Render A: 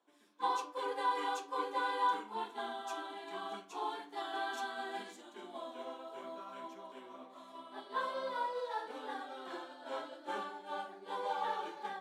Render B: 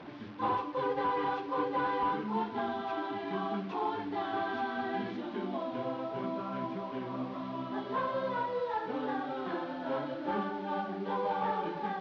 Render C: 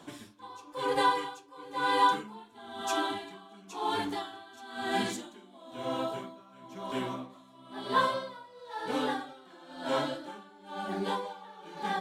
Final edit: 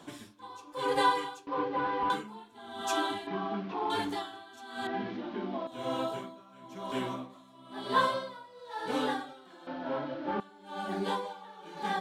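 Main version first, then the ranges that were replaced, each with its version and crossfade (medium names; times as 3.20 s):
C
1.47–2.10 s: from B
3.27–3.90 s: from B
4.87–5.67 s: from B
9.67–10.40 s: from B
not used: A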